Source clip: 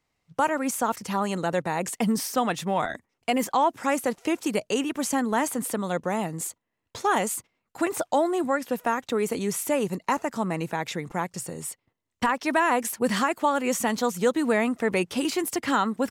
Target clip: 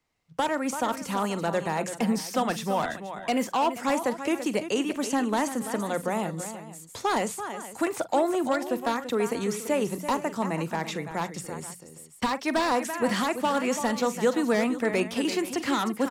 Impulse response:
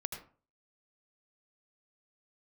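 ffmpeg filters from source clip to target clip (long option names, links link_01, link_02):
-filter_complex "[0:a]bandreject=frequency=60:width_type=h:width=6,bandreject=frequency=120:width_type=h:width=6,bandreject=frequency=180:width_type=h:width=6,aecho=1:1:43|336|478:0.15|0.282|0.141,acrossover=split=190|800|4400[link_01][link_02][link_03][link_04];[link_03]aeval=exprs='0.0668*(abs(mod(val(0)/0.0668+3,4)-2)-1)':channel_layout=same[link_05];[link_01][link_02][link_05][link_04]amix=inputs=4:normalize=0,acrossover=split=7100[link_06][link_07];[link_07]acompressor=threshold=-41dB:ratio=4:attack=1:release=60[link_08];[link_06][link_08]amix=inputs=2:normalize=0,volume=-1dB"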